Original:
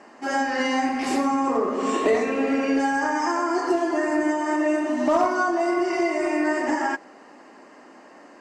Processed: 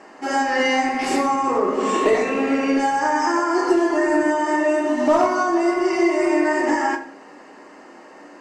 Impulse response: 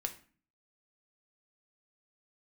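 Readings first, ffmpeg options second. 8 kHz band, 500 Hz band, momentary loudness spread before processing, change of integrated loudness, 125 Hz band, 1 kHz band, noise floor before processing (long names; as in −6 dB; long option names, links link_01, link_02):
+4.0 dB, +4.0 dB, 3 LU, +3.5 dB, can't be measured, +4.0 dB, −48 dBFS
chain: -filter_complex "[1:a]atrim=start_sample=2205[link_01];[0:a][link_01]afir=irnorm=-1:irlink=0,volume=4dB"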